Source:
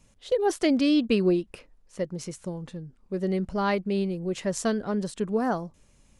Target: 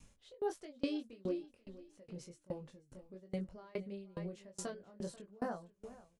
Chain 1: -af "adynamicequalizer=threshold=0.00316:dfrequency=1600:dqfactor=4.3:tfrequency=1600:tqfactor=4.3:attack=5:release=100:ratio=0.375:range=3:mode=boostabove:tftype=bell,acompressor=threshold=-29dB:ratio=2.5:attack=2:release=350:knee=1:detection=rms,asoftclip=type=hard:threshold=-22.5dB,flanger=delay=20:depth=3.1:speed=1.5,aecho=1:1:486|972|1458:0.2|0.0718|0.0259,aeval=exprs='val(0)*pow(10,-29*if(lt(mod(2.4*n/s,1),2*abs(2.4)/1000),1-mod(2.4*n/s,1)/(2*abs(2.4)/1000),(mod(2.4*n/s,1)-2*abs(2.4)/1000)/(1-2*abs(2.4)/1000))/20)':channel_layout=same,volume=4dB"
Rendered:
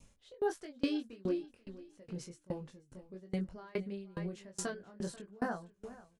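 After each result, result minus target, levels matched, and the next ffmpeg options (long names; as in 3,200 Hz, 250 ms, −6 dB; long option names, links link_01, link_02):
downward compressor: peak gain reduction −4.5 dB; 2,000 Hz band +4.0 dB
-af "adynamicequalizer=threshold=0.00316:dfrequency=1600:dqfactor=4.3:tfrequency=1600:tqfactor=4.3:attack=5:release=100:ratio=0.375:range=3:mode=boostabove:tftype=bell,acompressor=threshold=-35.5dB:ratio=2.5:attack=2:release=350:knee=1:detection=rms,asoftclip=type=hard:threshold=-22.5dB,flanger=delay=20:depth=3.1:speed=1.5,aecho=1:1:486|972|1458:0.2|0.0718|0.0259,aeval=exprs='val(0)*pow(10,-29*if(lt(mod(2.4*n/s,1),2*abs(2.4)/1000),1-mod(2.4*n/s,1)/(2*abs(2.4)/1000),(mod(2.4*n/s,1)-2*abs(2.4)/1000)/(1-2*abs(2.4)/1000))/20)':channel_layout=same,volume=4dB"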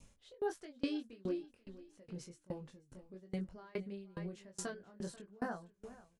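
2,000 Hz band +4.0 dB
-af "adynamicequalizer=threshold=0.00316:dfrequency=560:dqfactor=4.3:tfrequency=560:tqfactor=4.3:attack=5:release=100:ratio=0.375:range=3:mode=boostabove:tftype=bell,acompressor=threshold=-35.5dB:ratio=2.5:attack=2:release=350:knee=1:detection=rms,asoftclip=type=hard:threshold=-22.5dB,flanger=delay=20:depth=3.1:speed=1.5,aecho=1:1:486|972|1458:0.2|0.0718|0.0259,aeval=exprs='val(0)*pow(10,-29*if(lt(mod(2.4*n/s,1),2*abs(2.4)/1000),1-mod(2.4*n/s,1)/(2*abs(2.4)/1000),(mod(2.4*n/s,1)-2*abs(2.4)/1000)/(1-2*abs(2.4)/1000))/20)':channel_layout=same,volume=4dB"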